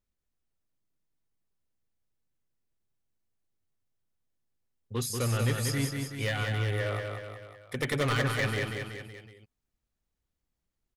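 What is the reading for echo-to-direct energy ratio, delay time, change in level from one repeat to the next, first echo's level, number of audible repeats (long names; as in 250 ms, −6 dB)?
−3.0 dB, 187 ms, −5.0 dB, −4.5 dB, 4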